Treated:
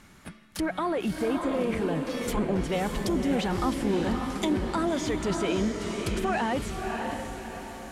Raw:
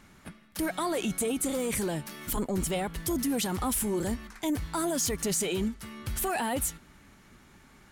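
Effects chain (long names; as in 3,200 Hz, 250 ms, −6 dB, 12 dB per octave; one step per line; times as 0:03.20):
treble cut that deepens with the level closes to 2,100 Hz, closed at −28 dBFS
high-shelf EQ 3,200 Hz +2 dB, from 0:02.10 +10 dB
feedback delay with all-pass diffusion 604 ms, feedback 46%, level −4 dB
level +2 dB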